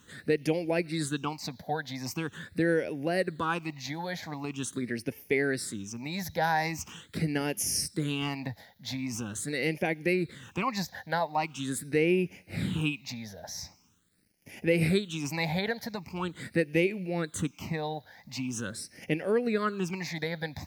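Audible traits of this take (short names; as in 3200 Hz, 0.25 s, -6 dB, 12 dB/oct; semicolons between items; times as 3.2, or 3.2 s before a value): a quantiser's noise floor 12-bit, dither none; phasing stages 8, 0.43 Hz, lowest notch 350–1200 Hz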